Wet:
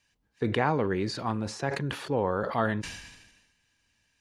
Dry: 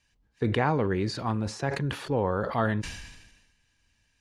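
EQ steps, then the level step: low shelf 80 Hz -12 dB; 0.0 dB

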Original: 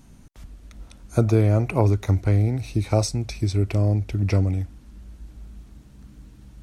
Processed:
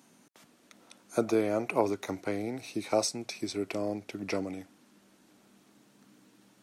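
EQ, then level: Bessel high-pass 320 Hz, order 4; -2.5 dB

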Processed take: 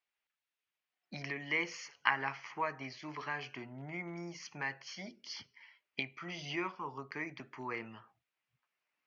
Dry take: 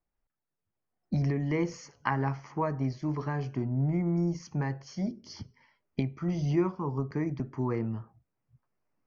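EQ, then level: band-pass 2700 Hz, Q 1.9; +10.5 dB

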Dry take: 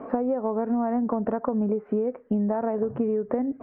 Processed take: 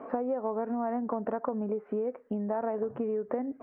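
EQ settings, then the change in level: low shelf 230 Hz -11.5 dB; -2.5 dB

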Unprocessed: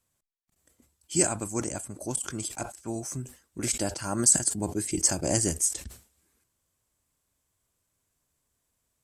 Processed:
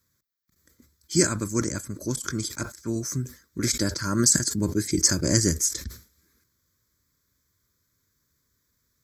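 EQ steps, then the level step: HPF 44 Hz; high shelf 10000 Hz +6.5 dB; fixed phaser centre 2800 Hz, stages 6; +7.5 dB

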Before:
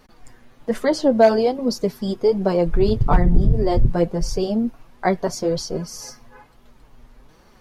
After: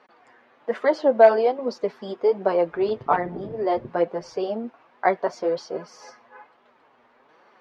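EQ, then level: BPF 500–2300 Hz; +2.0 dB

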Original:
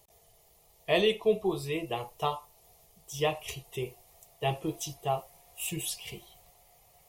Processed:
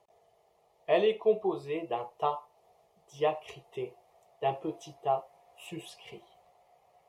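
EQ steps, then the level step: band-pass 690 Hz, Q 0.76; +2.0 dB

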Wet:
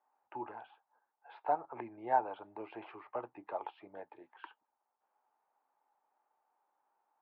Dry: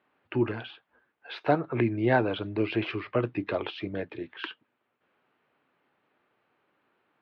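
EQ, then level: band-pass 850 Hz, Q 6.7; +3.0 dB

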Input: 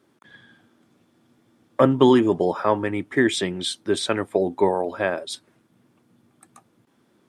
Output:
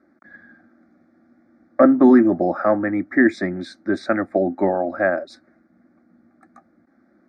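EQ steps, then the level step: Butterworth band-stop 2800 Hz, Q 2.5; air absorption 260 m; fixed phaser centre 650 Hz, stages 8; +7.0 dB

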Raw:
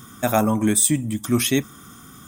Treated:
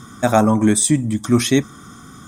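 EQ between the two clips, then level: LPF 7200 Hz 12 dB/oct; bell 2800 Hz -8 dB 0.47 oct; +5.0 dB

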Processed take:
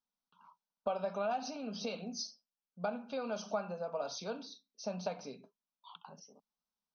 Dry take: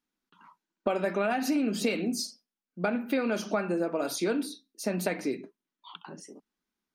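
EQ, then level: brick-wall FIR low-pass 6400 Hz; low shelf 110 Hz -7 dB; fixed phaser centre 800 Hz, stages 4; -4.0 dB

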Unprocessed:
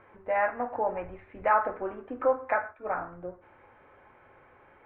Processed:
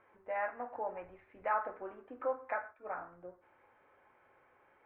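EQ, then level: low shelf 200 Hz -9.5 dB; -9.0 dB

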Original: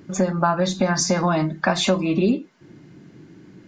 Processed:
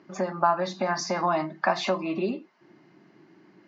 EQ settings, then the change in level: speaker cabinet 270–5400 Hz, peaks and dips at 270 Hz -6 dB, 480 Hz -10 dB, 1500 Hz -6 dB, 2400 Hz -4 dB, 3500 Hz -8 dB; low shelf 360 Hz -8.5 dB; high shelf 4100 Hz -11.5 dB; +2.0 dB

